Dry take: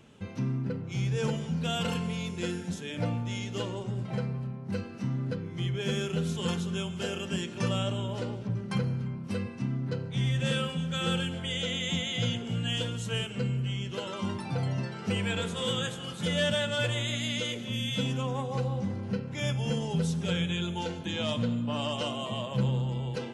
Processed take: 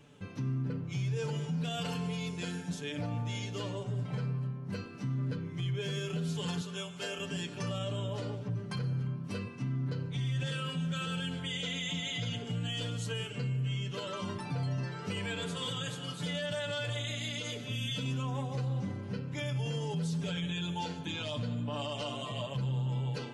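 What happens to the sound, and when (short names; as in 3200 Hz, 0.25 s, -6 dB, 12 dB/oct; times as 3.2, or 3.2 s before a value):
6.61–7.19 HPF 430 Hz 6 dB/oct
whole clip: dynamic EQ 4500 Hz, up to +7 dB, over -57 dBFS, Q 4.6; comb 6.9 ms, depth 75%; limiter -23 dBFS; gain -4 dB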